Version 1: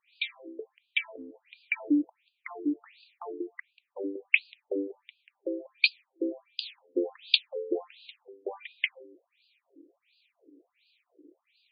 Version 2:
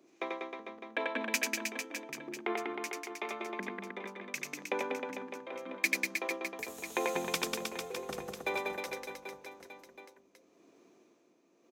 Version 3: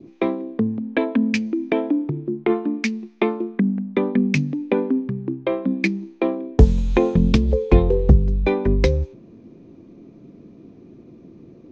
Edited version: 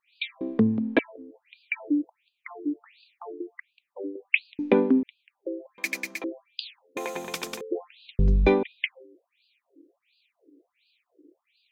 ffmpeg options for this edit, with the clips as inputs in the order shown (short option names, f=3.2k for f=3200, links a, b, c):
-filter_complex "[2:a]asplit=3[a][b][c];[1:a]asplit=2[d][e];[0:a]asplit=6[f][g][h][i][j][k];[f]atrim=end=0.412[l];[a]atrim=start=0.408:end=0.992[m];[g]atrim=start=0.988:end=4.592[n];[b]atrim=start=4.588:end=5.032[o];[h]atrim=start=5.028:end=5.782[p];[d]atrim=start=5.778:end=6.242[q];[i]atrim=start=6.238:end=6.972[r];[e]atrim=start=6.968:end=7.612[s];[j]atrim=start=7.608:end=8.192[t];[c]atrim=start=8.188:end=8.632[u];[k]atrim=start=8.628[v];[l][m]acrossfade=d=0.004:c1=hsin:c2=hsin[w];[w][n]acrossfade=d=0.004:c1=hsin:c2=hsin[x];[x][o]acrossfade=d=0.004:c1=hsin:c2=hsin[y];[y][p]acrossfade=d=0.004:c1=hsin:c2=hsin[z];[z][q]acrossfade=d=0.004:c1=hsin:c2=hsin[aa];[aa][r]acrossfade=d=0.004:c1=hsin:c2=hsin[ab];[ab][s]acrossfade=d=0.004:c1=hsin:c2=hsin[ac];[ac][t]acrossfade=d=0.004:c1=hsin:c2=hsin[ad];[ad][u]acrossfade=d=0.004:c1=hsin:c2=hsin[ae];[ae][v]acrossfade=d=0.004:c1=hsin:c2=hsin"